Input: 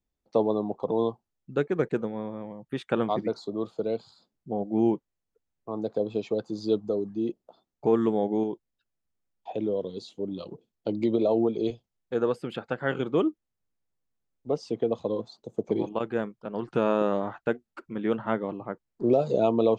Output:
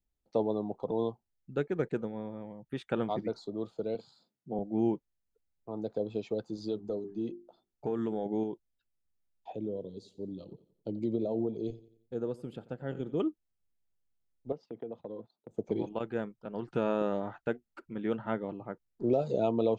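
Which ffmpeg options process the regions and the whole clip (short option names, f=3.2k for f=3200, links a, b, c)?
-filter_complex "[0:a]asettb=1/sr,asplit=3[a][b][c];[a]atrim=end=3.954[d];[b]atrim=start=3.95:end=4.59,asetpts=PTS-STARTPTS,afade=t=in:d=0.004:c=qsin,afade=t=out:st=0.636:d=0.004:c=qsin,highpass=f=120:w=0.5412,highpass=f=120:w=1.3066,asplit=2[e][f];[f]adelay=38,volume=-10dB[g];[e][g]amix=inputs=2:normalize=0,atrim=end_sample=28224[h];[c]atrim=start=4.586[i];[d][h]acrossfade=d=0.004:c1=hsin:c2=qsin[j];[j][i]acrossfade=d=0.004:c1=qsin:c2=hsin,asettb=1/sr,asplit=3[k][l][m];[k]atrim=end=6.554[n];[l]atrim=start=6.55:end=8.26,asetpts=PTS-STARTPTS,afade=t=in:d=0.004:c=qsin,afade=t=out:st=1.706:d=0.004:c=qsin,bandreject=f=50:t=h:w=6,bandreject=f=100:t=h:w=6,bandreject=f=150:t=h:w=6,bandreject=f=200:t=h:w=6,bandreject=f=250:t=h:w=6,bandreject=f=300:t=h:w=6,bandreject=f=350:t=h:w=6,bandreject=f=400:t=h:w=6,acompressor=threshold=-23dB:ratio=3:attack=3.2:release=140:knee=1:detection=peak[o];[m]atrim=start=8.256[p];[n][o]acrossfade=d=0.004:c1=hsin:c2=qsin[q];[q][p]acrossfade=d=0.004:c1=qsin:c2=hsin,asettb=1/sr,asplit=3[r][s][t];[r]atrim=end=9.554[u];[s]atrim=start=9.55:end=13.2,asetpts=PTS-STARTPTS,afade=t=in:d=0.004:c=qsin,afade=t=out:st=3.646:d=0.004:c=qsin,equalizer=f=1.9k:t=o:w=2.7:g=-13,aecho=1:1:89|178|267|356:0.119|0.0523|0.023|0.0101,atrim=end_sample=160965[v];[t]atrim=start=13.196[w];[u][v]acrossfade=d=0.004:c1=hsin:c2=qsin[x];[x][w]acrossfade=d=0.004:c1=qsin:c2=hsin,asettb=1/sr,asplit=3[y][z][aa];[y]atrim=end=14.524[ab];[z]atrim=start=14.52:end=15.51,asetpts=PTS-STARTPTS,afade=t=in:d=0.004:c=qsin,afade=t=out:st=0.986:d=0.004:c=qsin,agate=range=-15dB:threshold=-45dB:ratio=16:release=100:detection=peak,acompressor=threshold=-37dB:ratio=2:attack=3.2:release=140:knee=1:detection=peak,highpass=130,lowpass=2.3k[ac];[aa]atrim=start=15.506[ad];[ab][ac]acrossfade=d=0.004:c1=hsin:c2=qsin[ae];[ae][ad]acrossfade=d=0.004:c1=qsin:c2=hsin,lowshelf=f=81:g=9,bandreject=f=1.1k:w=9.1,volume=-6dB"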